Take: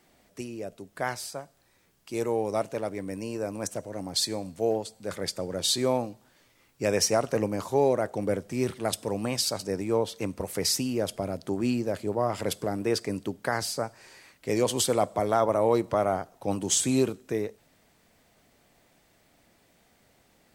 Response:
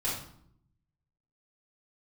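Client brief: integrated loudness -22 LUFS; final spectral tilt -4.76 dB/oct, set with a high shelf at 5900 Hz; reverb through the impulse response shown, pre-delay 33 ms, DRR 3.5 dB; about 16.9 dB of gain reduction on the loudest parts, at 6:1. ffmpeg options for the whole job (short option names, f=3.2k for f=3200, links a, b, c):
-filter_complex "[0:a]highshelf=f=5.9k:g=-8.5,acompressor=threshold=-38dB:ratio=6,asplit=2[a][b];[1:a]atrim=start_sample=2205,adelay=33[c];[b][c]afir=irnorm=-1:irlink=0,volume=-9.5dB[d];[a][d]amix=inputs=2:normalize=0,volume=18dB"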